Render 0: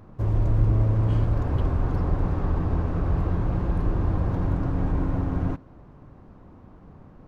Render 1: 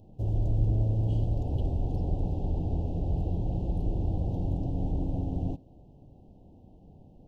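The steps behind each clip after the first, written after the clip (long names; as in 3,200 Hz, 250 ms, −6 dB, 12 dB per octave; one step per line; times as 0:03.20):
elliptic band-stop filter 790–2,800 Hz, stop band 50 dB
parametric band 2,200 Hz −13 dB 0.27 octaves
level −5 dB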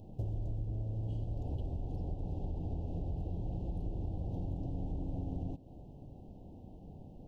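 downward compressor 10 to 1, threshold −36 dBFS, peak gain reduction 17 dB
level +2.5 dB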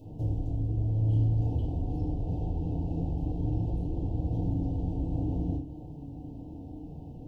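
feedback delay network reverb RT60 0.46 s, low-frequency decay 1.5×, high-frequency decay 0.85×, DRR −8 dB
level −3 dB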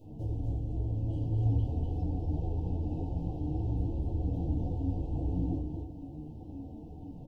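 single-tap delay 244 ms −4 dB
string-ensemble chorus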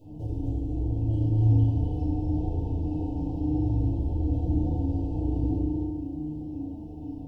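feedback delay network reverb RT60 1.3 s, low-frequency decay 0.9×, high-frequency decay 0.75×, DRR 2 dB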